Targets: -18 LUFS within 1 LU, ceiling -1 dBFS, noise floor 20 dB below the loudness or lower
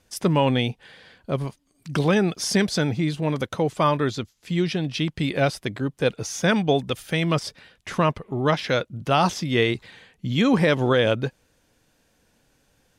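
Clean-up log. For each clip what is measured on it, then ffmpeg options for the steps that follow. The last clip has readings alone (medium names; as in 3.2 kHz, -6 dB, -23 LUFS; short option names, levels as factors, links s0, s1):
loudness -23.5 LUFS; peak level -8.5 dBFS; loudness target -18.0 LUFS
-> -af "volume=1.88"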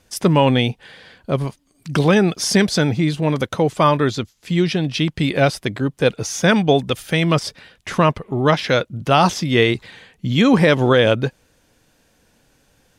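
loudness -18.0 LUFS; peak level -3.0 dBFS; noise floor -60 dBFS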